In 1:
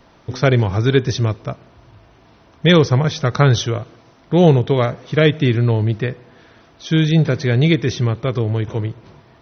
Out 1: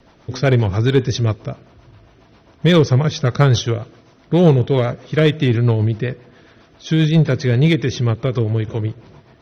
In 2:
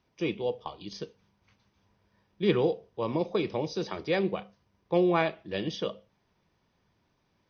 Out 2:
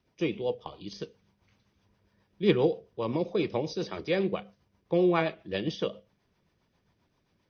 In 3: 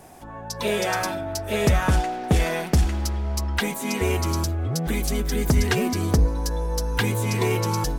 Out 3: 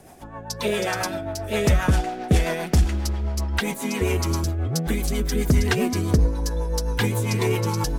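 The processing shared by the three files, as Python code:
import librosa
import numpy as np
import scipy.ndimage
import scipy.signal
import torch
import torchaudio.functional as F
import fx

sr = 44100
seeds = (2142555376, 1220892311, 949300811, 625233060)

p1 = fx.rotary(x, sr, hz=7.5)
p2 = np.clip(10.0 ** (12.0 / 20.0) * p1, -1.0, 1.0) / 10.0 ** (12.0 / 20.0)
p3 = p1 + F.gain(torch.from_numpy(p2), -3.0).numpy()
y = F.gain(torch.from_numpy(p3), -2.5).numpy()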